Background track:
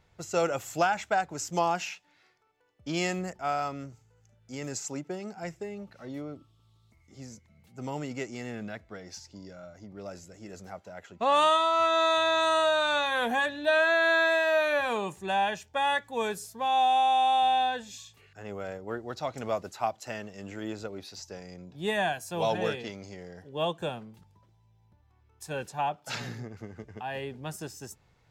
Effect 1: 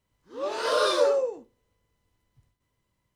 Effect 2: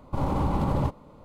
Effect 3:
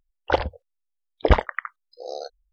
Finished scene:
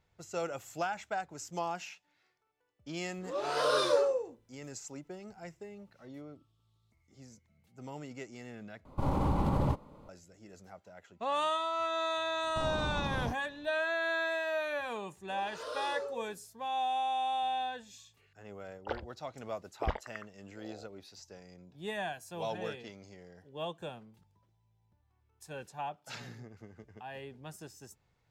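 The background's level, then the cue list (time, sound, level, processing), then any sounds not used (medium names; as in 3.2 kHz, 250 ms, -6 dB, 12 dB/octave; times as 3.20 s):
background track -9 dB
2.92 s: add 1 -5 dB
8.85 s: replace with 2 -4 dB
12.43 s: add 2 -11 dB + resonant low-pass 5.8 kHz, resonance Q 8.9
14.95 s: add 1 -16.5 dB
18.57 s: add 3 -17.5 dB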